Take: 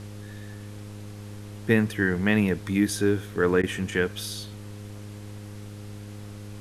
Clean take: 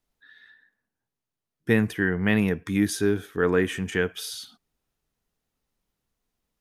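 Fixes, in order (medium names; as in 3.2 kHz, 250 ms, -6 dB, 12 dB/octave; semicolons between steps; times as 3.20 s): de-hum 103.3 Hz, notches 5; interpolate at 3.62 s, 12 ms; noise reduction 30 dB, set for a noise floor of -40 dBFS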